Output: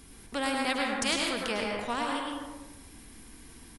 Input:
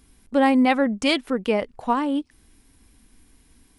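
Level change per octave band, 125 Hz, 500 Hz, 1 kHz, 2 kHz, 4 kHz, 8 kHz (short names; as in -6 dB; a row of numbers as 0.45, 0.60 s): n/a, -10.0 dB, -8.0 dB, -3.5 dB, -2.0 dB, +6.0 dB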